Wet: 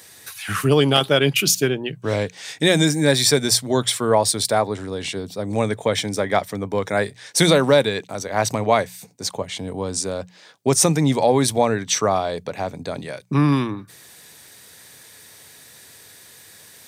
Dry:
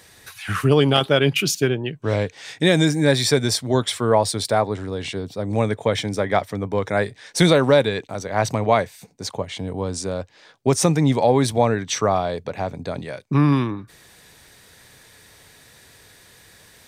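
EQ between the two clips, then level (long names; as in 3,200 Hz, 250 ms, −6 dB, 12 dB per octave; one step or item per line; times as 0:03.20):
high-pass filter 100 Hz
high-shelf EQ 5,600 Hz +9.5 dB
mains-hum notches 60/120/180 Hz
0.0 dB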